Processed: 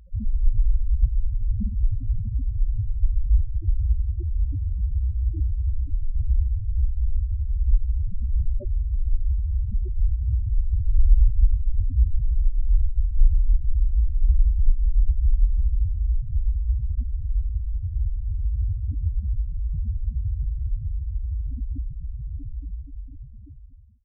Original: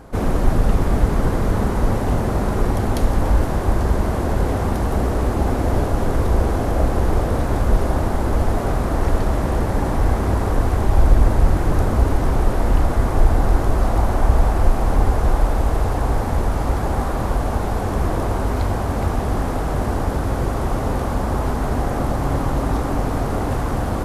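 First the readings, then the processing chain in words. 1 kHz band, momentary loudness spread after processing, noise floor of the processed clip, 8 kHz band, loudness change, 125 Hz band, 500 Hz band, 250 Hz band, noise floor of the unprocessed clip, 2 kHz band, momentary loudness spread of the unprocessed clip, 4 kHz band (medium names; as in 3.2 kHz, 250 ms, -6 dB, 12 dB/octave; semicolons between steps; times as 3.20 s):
under -40 dB, 7 LU, -37 dBFS, under -40 dB, -5.5 dB, -5.5 dB, -35.0 dB, -22.5 dB, -23 dBFS, under -40 dB, 4 LU, under -40 dB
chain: fade out at the end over 3.44 s; loudest bins only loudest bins 2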